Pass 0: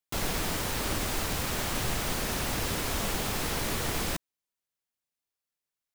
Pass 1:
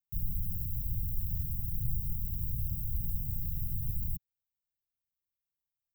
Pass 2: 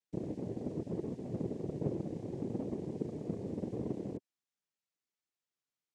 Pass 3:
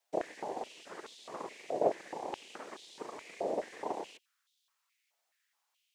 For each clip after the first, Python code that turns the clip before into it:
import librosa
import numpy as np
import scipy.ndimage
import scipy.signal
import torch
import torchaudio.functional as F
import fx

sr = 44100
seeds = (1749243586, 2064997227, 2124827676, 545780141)

y1 = scipy.signal.sosfilt(scipy.signal.cheby2(4, 70, [570.0, 5700.0], 'bandstop', fs=sr, output='sos'), x)
y1 = y1 * 10.0 ** (2.5 / 20.0)
y2 = fx.noise_vocoder(y1, sr, seeds[0], bands=3)
y2 = y2 * 10.0 ** (3.0 / 20.0)
y3 = fx.filter_held_highpass(y2, sr, hz=4.7, low_hz=680.0, high_hz=3600.0)
y3 = y3 * 10.0 ** (11.0 / 20.0)